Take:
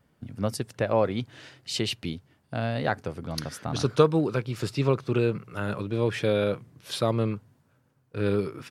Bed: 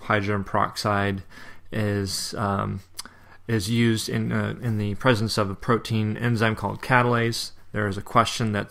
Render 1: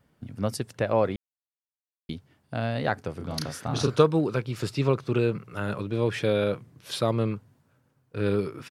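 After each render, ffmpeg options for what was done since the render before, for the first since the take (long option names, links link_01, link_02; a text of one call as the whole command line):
ffmpeg -i in.wav -filter_complex "[0:a]asplit=3[link_01][link_02][link_03];[link_01]afade=type=out:start_time=3.19:duration=0.02[link_04];[link_02]asplit=2[link_05][link_06];[link_06]adelay=33,volume=-4dB[link_07];[link_05][link_07]amix=inputs=2:normalize=0,afade=type=in:start_time=3.19:duration=0.02,afade=type=out:start_time=4:duration=0.02[link_08];[link_03]afade=type=in:start_time=4:duration=0.02[link_09];[link_04][link_08][link_09]amix=inputs=3:normalize=0,asplit=3[link_10][link_11][link_12];[link_10]atrim=end=1.16,asetpts=PTS-STARTPTS,afade=type=out:start_time=1.156:duration=0.004:curve=hsin[link_13];[link_11]atrim=start=1.16:end=2.09,asetpts=PTS-STARTPTS,volume=0[link_14];[link_12]atrim=start=2.09,asetpts=PTS-STARTPTS,afade=type=in:duration=0.004:curve=hsin[link_15];[link_13][link_14][link_15]concat=n=3:v=0:a=1" out.wav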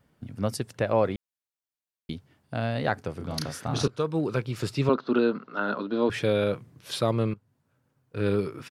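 ffmpeg -i in.wav -filter_complex "[0:a]asettb=1/sr,asplit=3[link_01][link_02][link_03];[link_01]atrim=end=4.894[link_04];[link_02]atrim=start=4.89:end=6.1,asetpts=PTS-STARTPTS,afade=type=in:duration=0.004:curve=qsin,afade=type=out:start_time=1.206:duration=0.004:curve=qsin,highpass=frequency=210:width=0.5412,highpass=frequency=210:width=1.3066,equalizer=frequency=250:width_type=q:width=4:gain=9,equalizer=frequency=670:width_type=q:width=4:gain=4,equalizer=frequency=970:width_type=q:width=4:gain=4,equalizer=frequency=1400:width_type=q:width=4:gain=8,equalizer=frequency=2300:width_type=q:width=4:gain=-9,equalizer=frequency=4100:width_type=q:width=4:gain=6,lowpass=frequency=4600:width=0.5412,lowpass=frequency=4600:width=1.3066[link_05];[link_03]atrim=start=6.096[link_06];[link_04][link_05]acrossfade=duration=0.004:curve1=hsin:curve2=qsin[link_07];[link_07][link_06]acrossfade=duration=0.004:curve1=qsin:curve2=hsin,asplit=3[link_08][link_09][link_10];[link_08]atrim=end=3.88,asetpts=PTS-STARTPTS,afade=type=out:start_time=3.876:duration=0.004:curve=hsin:silence=0.0668344[link_11];[link_09]atrim=start=3.88:end=7.34,asetpts=PTS-STARTPTS,afade=type=in:duration=0.45:silence=0.0668344,afade=type=out:start_time=3.456:duration=0.004:curve=hsin:silence=0.158489[link_12];[link_10]atrim=start=7.34,asetpts=PTS-STARTPTS,afade=type=in:duration=0.87:silence=0.158489[link_13];[link_11][link_12][link_13]concat=n=3:v=0:a=1" out.wav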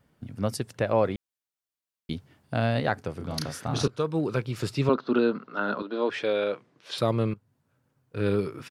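ffmpeg -i in.wav -filter_complex "[0:a]asettb=1/sr,asplit=3[link_01][link_02][link_03];[link_01]atrim=end=5.824[link_04];[link_02]atrim=start=5.82:end=6.98,asetpts=PTS-STARTPTS,afade=type=in:duration=0.004:curve=qsin,afade=type=out:start_time=1.156:duration=0.004:curve=qsin,highpass=350,lowpass=5100[link_05];[link_03]atrim=start=6.976[link_06];[link_04][link_05]acrossfade=duration=0.004:curve1=hsin:curve2=qsin[link_07];[link_07][link_06]acrossfade=duration=0.004:curve1=qsin:curve2=hsin,asplit=3[link_08][link_09][link_10];[link_08]atrim=end=2.112[link_11];[link_09]atrim=start=2.108:end=2.802,asetpts=PTS-STARTPTS,volume=3.5dB[link_12];[link_10]atrim=start=2.798[link_13];[link_11][link_12]acrossfade=duration=0.004:curve1=hsin:curve2=hsin[link_14];[link_14][link_13]acrossfade=duration=0.004:curve1=hsin:curve2=hsin" out.wav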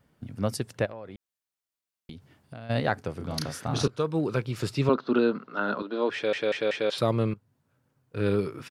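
ffmpeg -i in.wav -filter_complex "[0:a]asplit=3[link_01][link_02][link_03];[link_01]afade=type=out:start_time=0.85:duration=0.02[link_04];[link_02]acompressor=threshold=-40dB:ratio=4:attack=3.2:release=140:knee=1:detection=peak,afade=type=in:start_time=0.85:duration=0.02,afade=type=out:start_time=2.69:duration=0.02[link_05];[link_03]afade=type=in:start_time=2.69:duration=0.02[link_06];[link_04][link_05][link_06]amix=inputs=3:normalize=0,asplit=5[link_07][link_08][link_09][link_10][link_11];[link_07]atrim=end=6.332[link_12];[link_08]atrim=start=6.138:end=6.332[link_13];[link_09]atrim=start=6.138:end=6.332[link_14];[link_10]atrim=start=6.138:end=6.332[link_15];[link_11]atrim=start=6.898[link_16];[link_12][link_13]acrossfade=duration=0.004:curve1=hsin:curve2=hsin[link_17];[link_17][link_14]acrossfade=duration=0.004:curve1=hsin:curve2=hsin[link_18];[link_18][link_15]acrossfade=duration=0.004:curve1=hsin:curve2=hsin[link_19];[link_19][link_16]acrossfade=duration=0.004:curve1=hsin:curve2=hsin" out.wav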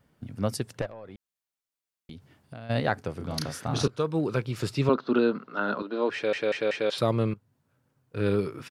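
ffmpeg -i in.wav -filter_complex "[0:a]asettb=1/sr,asplit=3[link_01][link_02][link_03];[link_01]atrim=end=0.814[link_04];[link_02]atrim=start=0.81:end=2.11,asetpts=PTS-STARTPTS,afade=type=in:duration=0.004:curve=qsin,afade=type=out:start_time=1.296:duration=0.004:curve=qsin,aeval=exprs='(tanh(20*val(0)+0.45)-tanh(0.45))/20':channel_layout=same[link_05];[link_03]atrim=start=2.106[link_06];[link_04][link_05]acrossfade=duration=0.004:curve1=hsin:curve2=qsin[link_07];[link_07][link_06]acrossfade=duration=0.004:curve1=qsin:curve2=hsin,asettb=1/sr,asplit=3[link_08][link_09][link_10];[link_08]atrim=end=5.784[link_11];[link_09]atrim=start=5.78:end=6.86,asetpts=PTS-STARTPTS,afade=type=in:duration=0.004:curve=qsin,afade=type=out:start_time=1.076:duration=0.004:curve=qsin,bandreject=frequency=3400:width=11[link_12];[link_10]atrim=start=6.856[link_13];[link_11][link_12]acrossfade=duration=0.004:curve1=hsin:curve2=qsin[link_14];[link_14][link_13]acrossfade=duration=0.004:curve1=qsin:curve2=hsin" out.wav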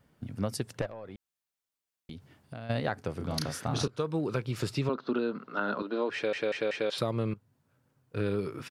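ffmpeg -i in.wav -af "acompressor=threshold=-26dB:ratio=6" out.wav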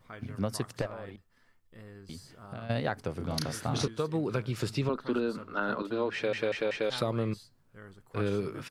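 ffmpeg -i in.wav -i bed.wav -filter_complex "[1:a]volume=-24.5dB[link_01];[0:a][link_01]amix=inputs=2:normalize=0" out.wav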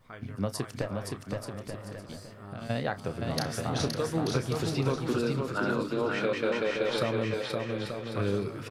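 ffmpeg -i in.wav -filter_complex "[0:a]asplit=2[link_01][link_02];[link_02]adelay=30,volume=-12.5dB[link_03];[link_01][link_03]amix=inputs=2:normalize=0,asplit=2[link_04][link_05];[link_05]aecho=0:1:520|884|1139|1317|1442:0.631|0.398|0.251|0.158|0.1[link_06];[link_04][link_06]amix=inputs=2:normalize=0" out.wav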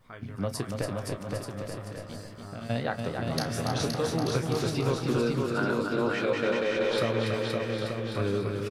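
ffmpeg -i in.wav -filter_complex "[0:a]asplit=2[link_01][link_02];[link_02]adelay=17,volume=-11dB[link_03];[link_01][link_03]amix=inputs=2:normalize=0,aecho=1:1:285:0.531" out.wav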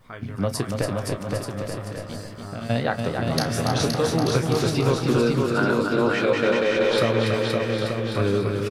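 ffmpeg -i in.wav -af "volume=6.5dB" out.wav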